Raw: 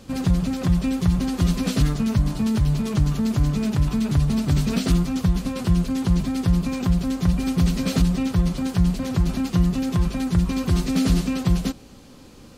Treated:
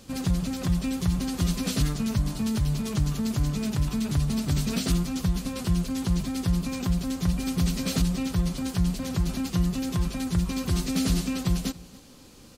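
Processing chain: treble shelf 3.5 kHz +8 dB; delay 284 ms -22 dB; trim -5.5 dB

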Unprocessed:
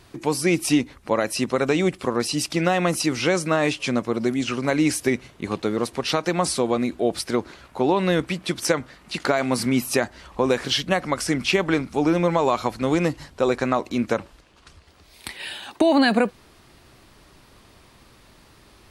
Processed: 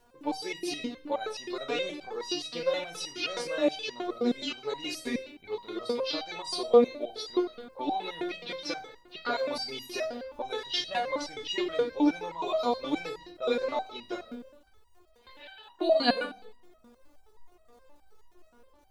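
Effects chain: level-controlled noise filter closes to 1.1 kHz, open at -17 dBFS; ten-band graphic EQ 125 Hz -7 dB, 250 Hz -4 dB, 500 Hz +5 dB, 2 kHz -4 dB, 4 kHz +11 dB, 8 kHz -9 dB; in parallel at +0.5 dB: peak limiter -10.5 dBFS, peak gain reduction 7 dB; on the sum: crackle 140 per s -39 dBFS; on a send at -6 dB: reverberation RT60 0.75 s, pre-delay 12 ms; on the sum: resonator arpeggio 9.5 Hz 240–950 Hz

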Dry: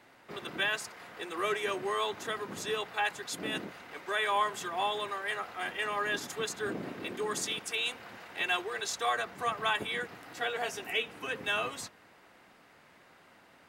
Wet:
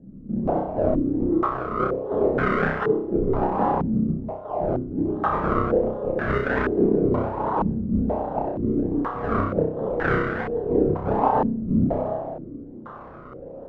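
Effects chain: simulated room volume 2700 m³, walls mixed, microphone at 2.1 m; compressor with a negative ratio -35 dBFS, ratio -0.5; decimation with a swept rate 36×, swing 100% 1.3 Hz; flutter echo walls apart 5.4 m, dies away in 0.58 s; step-sequenced low-pass 2.1 Hz 220–1600 Hz; trim +6.5 dB

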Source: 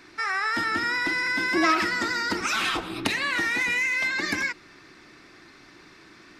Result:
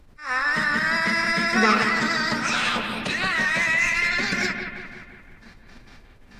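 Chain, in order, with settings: gate with hold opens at -39 dBFS; hum notches 60/120/180/240/300/360/420/480 Hz; dynamic bell 110 Hz, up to -4 dB, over -59 dBFS, Q 4.3; added noise brown -49 dBFS; formant-preserving pitch shift -7 st; bucket-brigade echo 173 ms, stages 4096, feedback 54%, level -7 dB; attacks held to a fixed rise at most 160 dB/s; trim +3 dB

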